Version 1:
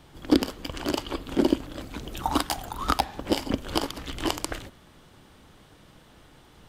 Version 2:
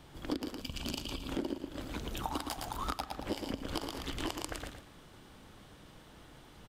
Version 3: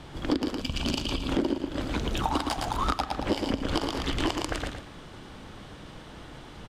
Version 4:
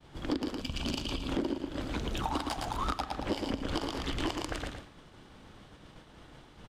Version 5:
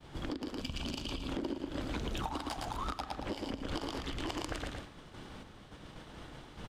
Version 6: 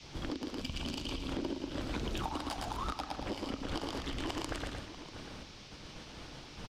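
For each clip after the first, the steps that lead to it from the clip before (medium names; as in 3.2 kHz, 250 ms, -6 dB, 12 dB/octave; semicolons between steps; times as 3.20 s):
feedback delay 113 ms, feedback 26%, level -7.5 dB; time-frequency box 0.61–1.28 s, 260–2300 Hz -10 dB; compression 6:1, threshold -31 dBFS, peak gain reduction 16 dB; trim -2.5 dB
in parallel at -5 dB: overload inside the chain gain 34.5 dB; on the sum: distance through air 51 m; trim +7 dB
expander -39 dBFS; in parallel at -5 dB: saturation -21.5 dBFS, distortion -15 dB; on the sum: trim -8.5 dB
random-step tremolo; compression 3:1, threshold -42 dBFS, peak gain reduction 11 dB; trim +5.5 dB
band noise 2.1–5.8 kHz -56 dBFS; echo from a far wall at 110 m, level -12 dB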